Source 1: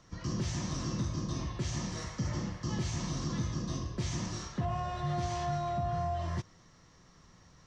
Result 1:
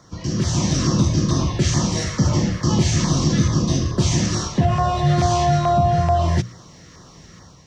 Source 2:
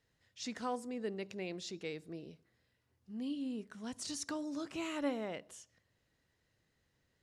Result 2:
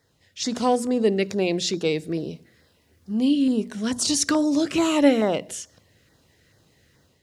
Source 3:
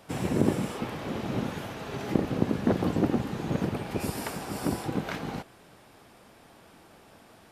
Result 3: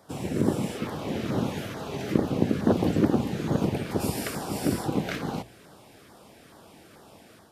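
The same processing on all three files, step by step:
high-pass 53 Hz; hum notches 60/120/180/240 Hz; level rider gain up to 6 dB; LFO notch saw down 2.3 Hz 710–2900 Hz; peak normalisation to -6 dBFS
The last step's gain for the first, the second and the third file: +11.5 dB, +13.5 dB, -2.0 dB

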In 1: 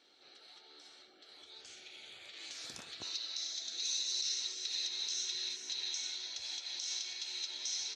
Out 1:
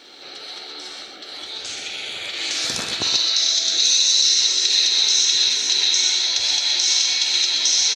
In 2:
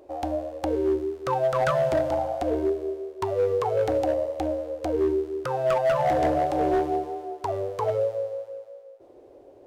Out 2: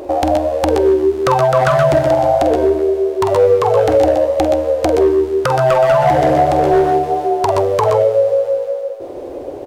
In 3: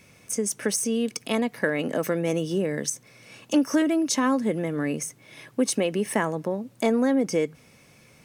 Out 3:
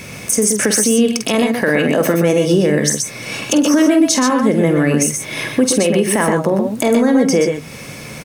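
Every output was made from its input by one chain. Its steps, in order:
compression 2.5:1, threshold -37 dBFS; on a send: multi-tap echo 47/123/137 ms -10/-7/-10.5 dB; on the sum: loudness maximiser +24.5 dB; trim -3 dB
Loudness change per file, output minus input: +21.0 LU, +12.0 LU, +11.0 LU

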